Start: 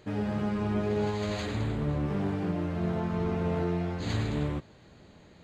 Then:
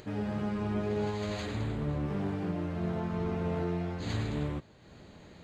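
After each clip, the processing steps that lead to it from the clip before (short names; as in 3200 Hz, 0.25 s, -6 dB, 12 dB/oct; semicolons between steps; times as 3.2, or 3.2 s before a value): upward compressor, threshold -41 dBFS; gain -3 dB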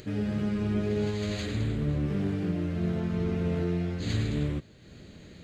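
bell 900 Hz -12.5 dB 1.1 oct; gain +5 dB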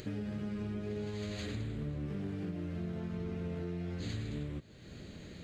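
compressor 6:1, threshold -36 dBFS, peak gain reduction 12 dB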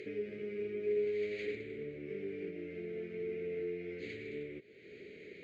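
double band-pass 960 Hz, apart 2.4 oct; gain +10 dB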